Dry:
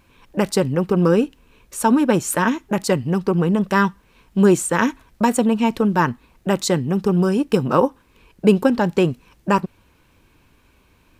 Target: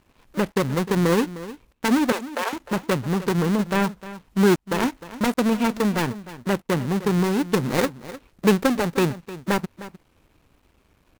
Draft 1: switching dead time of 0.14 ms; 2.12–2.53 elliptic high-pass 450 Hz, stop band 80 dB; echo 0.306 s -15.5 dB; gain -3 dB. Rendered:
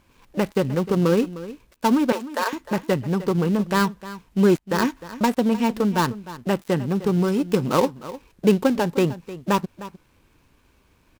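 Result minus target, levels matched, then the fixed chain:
switching dead time: distortion -9 dB
switching dead time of 0.42 ms; 2.12–2.53 elliptic high-pass 450 Hz, stop band 80 dB; echo 0.306 s -15.5 dB; gain -3 dB

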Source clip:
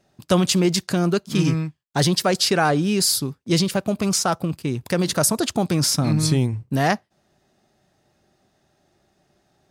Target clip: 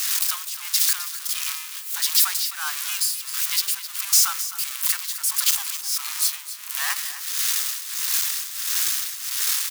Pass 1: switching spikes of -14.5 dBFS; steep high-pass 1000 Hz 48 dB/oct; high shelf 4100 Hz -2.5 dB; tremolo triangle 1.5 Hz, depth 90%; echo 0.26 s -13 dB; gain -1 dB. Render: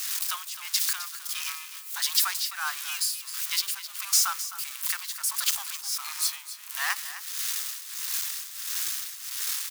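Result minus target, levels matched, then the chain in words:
switching spikes: distortion -7 dB
switching spikes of -7 dBFS; steep high-pass 1000 Hz 48 dB/oct; high shelf 4100 Hz -2.5 dB; tremolo triangle 1.5 Hz, depth 90%; echo 0.26 s -13 dB; gain -1 dB

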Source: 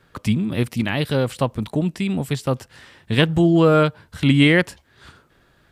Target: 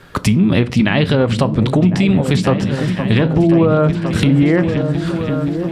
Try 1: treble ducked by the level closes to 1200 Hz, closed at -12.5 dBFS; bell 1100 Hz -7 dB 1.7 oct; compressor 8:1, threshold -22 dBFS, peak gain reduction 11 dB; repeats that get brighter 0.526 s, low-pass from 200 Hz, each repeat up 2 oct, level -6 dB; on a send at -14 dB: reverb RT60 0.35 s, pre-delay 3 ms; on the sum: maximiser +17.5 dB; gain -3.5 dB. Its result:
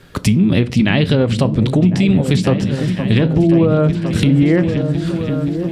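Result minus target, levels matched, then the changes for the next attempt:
1000 Hz band -4.5 dB
remove: bell 1100 Hz -7 dB 1.7 oct

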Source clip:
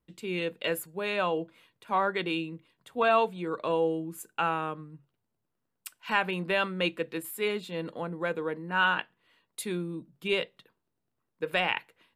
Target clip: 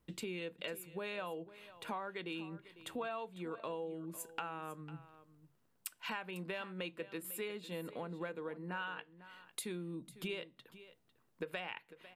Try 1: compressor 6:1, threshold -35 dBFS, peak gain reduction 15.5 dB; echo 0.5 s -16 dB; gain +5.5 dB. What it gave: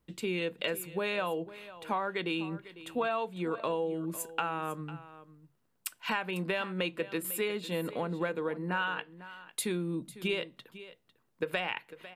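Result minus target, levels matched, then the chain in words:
compressor: peak gain reduction -9.5 dB
compressor 6:1, threshold -46.5 dBFS, peak gain reduction 25 dB; echo 0.5 s -16 dB; gain +5.5 dB

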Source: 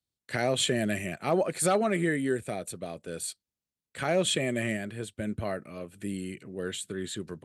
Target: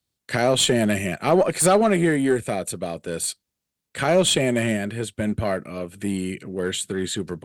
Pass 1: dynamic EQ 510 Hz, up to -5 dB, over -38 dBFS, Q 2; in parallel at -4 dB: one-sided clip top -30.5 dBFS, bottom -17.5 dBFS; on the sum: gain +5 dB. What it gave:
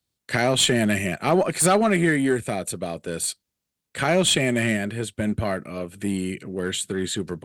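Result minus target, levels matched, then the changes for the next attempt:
2000 Hz band +3.0 dB
change: dynamic EQ 2000 Hz, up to -5 dB, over -38 dBFS, Q 2

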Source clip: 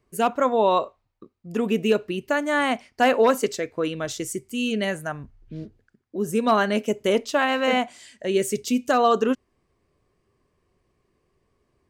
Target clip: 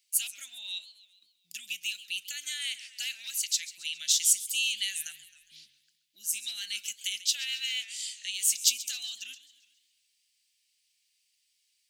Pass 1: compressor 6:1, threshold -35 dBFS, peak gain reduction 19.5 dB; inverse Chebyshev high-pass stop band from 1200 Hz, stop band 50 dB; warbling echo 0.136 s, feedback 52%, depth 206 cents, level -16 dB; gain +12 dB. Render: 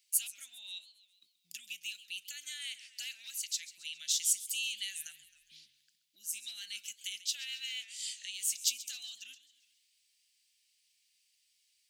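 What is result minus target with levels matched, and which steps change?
compressor: peak gain reduction +7.5 dB
change: compressor 6:1, threshold -26 dBFS, peak gain reduction 12 dB

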